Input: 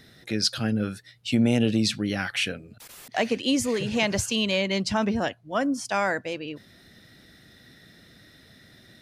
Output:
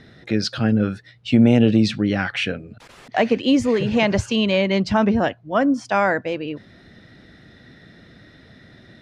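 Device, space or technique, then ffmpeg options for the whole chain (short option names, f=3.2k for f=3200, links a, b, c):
through cloth: -af "lowpass=7.5k,highshelf=f=3.8k:g=-15,volume=7.5dB"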